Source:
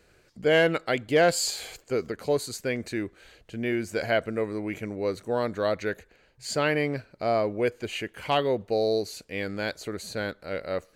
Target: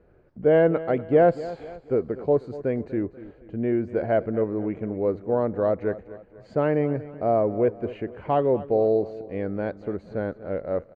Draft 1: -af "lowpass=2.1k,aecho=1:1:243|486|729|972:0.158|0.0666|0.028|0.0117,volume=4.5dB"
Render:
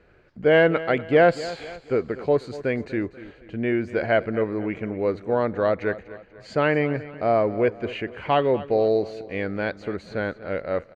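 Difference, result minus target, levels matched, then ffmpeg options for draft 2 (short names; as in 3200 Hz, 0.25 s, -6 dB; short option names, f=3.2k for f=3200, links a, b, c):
2000 Hz band +9.5 dB
-af "lowpass=840,aecho=1:1:243|486|729|972:0.158|0.0666|0.028|0.0117,volume=4.5dB"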